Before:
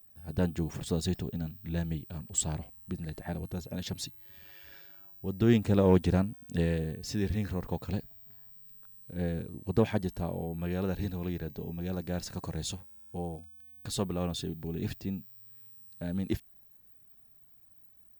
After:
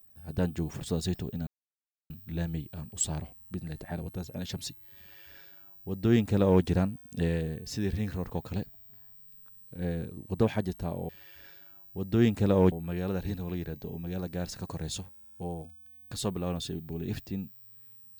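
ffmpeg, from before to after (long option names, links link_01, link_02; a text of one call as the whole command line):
ffmpeg -i in.wav -filter_complex "[0:a]asplit=4[link_01][link_02][link_03][link_04];[link_01]atrim=end=1.47,asetpts=PTS-STARTPTS,afade=type=out:start_time=1.466:duration=0.004:curve=hsin,apad=pad_dur=0.63[link_05];[link_02]atrim=start=1.47:end=10.462,asetpts=PTS-STARTPTS,afade=type=in:duration=0.004:curve=hsin[link_06];[link_03]atrim=start=4.368:end=6.002[link_07];[link_04]atrim=start=10.458[link_08];[link_05][link_06]concat=n=2:v=0:a=1[link_09];[link_09][link_07]acrossfade=duration=0.004:curve1=hsin:curve2=hsin[link_10];[link_10][link_08]acrossfade=duration=0.004:curve1=hsin:curve2=hsin" out.wav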